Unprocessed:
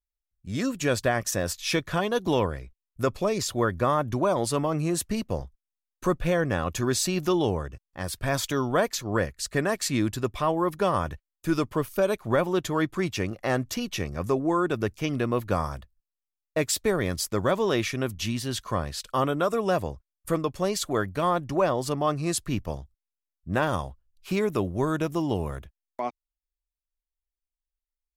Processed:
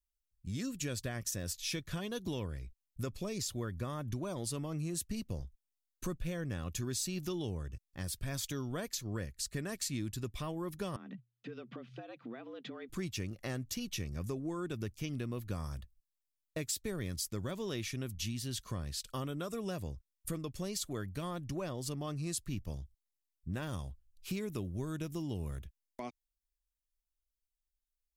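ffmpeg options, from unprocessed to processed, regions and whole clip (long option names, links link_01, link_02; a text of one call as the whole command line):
ffmpeg -i in.wav -filter_complex "[0:a]asettb=1/sr,asplit=3[link_01][link_02][link_03];[link_01]atrim=end=10.964[link_04];[link_02]atrim=start=10.96:end=12.89,asetpts=PTS-STARTPTS,afade=type=in:duration=0.004:curve=qsin,afade=type=out:start_time=1.926:duration=0.004:curve=qsin,lowpass=frequency=3300:width=0.5412,lowpass=frequency=3300:width=1.3066,acompressor=threshold=-35dB:ratio=6:attack=3.2:release=140:knee=1:detection=peak,afreqshift=120[link_05];[link_03]atrim=start=12.886[link_06];[link_04][link_05]acrossfade=duration=0.004:curve1=hsin:curve2=qsin[link_07];[link_07][link_06]acrossfade=duration=0.004:curve1=qsin:curve2=hsin,equalizer=frequency=860:width=0.47:gain=-14.5,acompressor=threshold=-39dB:ratio=2.5,volume=1dB" out.wav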